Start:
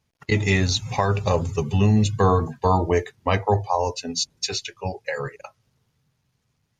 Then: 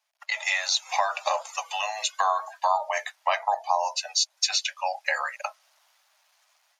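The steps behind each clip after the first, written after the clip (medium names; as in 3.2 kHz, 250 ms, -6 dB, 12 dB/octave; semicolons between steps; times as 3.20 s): level rider gain up to 12.5 dB; steep high-pass 590 Hz 96 dB/octave; compression 2:1, threshold -26 dBFS, peak gain reduction 9.5 dB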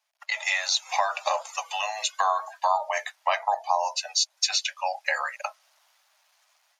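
no audible change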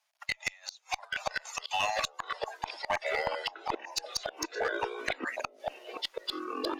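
inverted gate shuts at -16 dBFS, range -30 dB; ever faster or slower copies 736 ms, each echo -5 st, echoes 3; one-sided clip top -25 dBFS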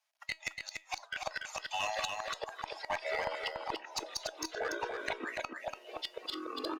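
feedback comb 320 Hz, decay 0.2 s, harmonics all, mix 50%; on a send: delay 288 ms -5 dB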